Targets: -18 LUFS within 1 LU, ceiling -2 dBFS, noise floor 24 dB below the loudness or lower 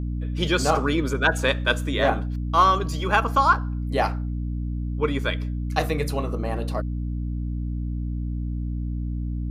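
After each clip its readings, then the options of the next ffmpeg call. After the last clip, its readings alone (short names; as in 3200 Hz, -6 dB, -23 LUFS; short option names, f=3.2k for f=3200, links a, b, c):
hum 60 Hz; harmonics up to 300 Hz; hum level -25 dBFS; loudness -24.5 LUFS; peak -5.5 dBFS; loudness target -18.0 LUFS
-> -af "bandreject=f=60:t=h:w=4,bandreject=f=120:t=h:w=4,bandreject=f=180:t=h:w=4,bandreject=f=240:t=h:w=4,bandreject=f=300:t=h:w=4"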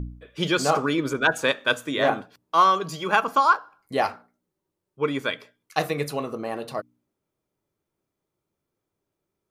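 hum none; loudness -24.0 LUFS; peak -6.0 dBFS; loudness target -18.0 LUFS
-> -af "volume=6dB,alimiter=limit=-2dB:level=0:latency=1"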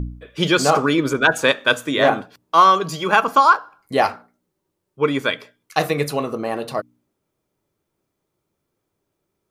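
loudness -18.5 LUFS; peak -2.0 dBFS; noise floor -77 dBFS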